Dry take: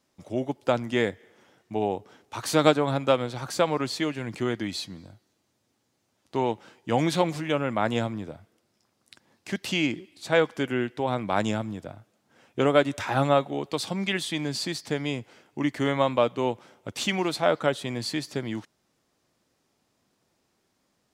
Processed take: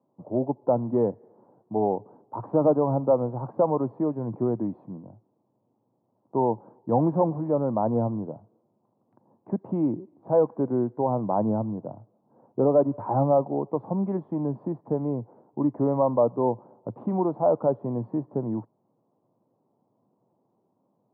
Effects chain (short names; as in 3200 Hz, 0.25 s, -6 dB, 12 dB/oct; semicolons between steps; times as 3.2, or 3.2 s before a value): soft clip -14.5 dBFS, distortion -14 dB; Chebyshev band-pass 110–990 Hz, order 4; gain +4 dB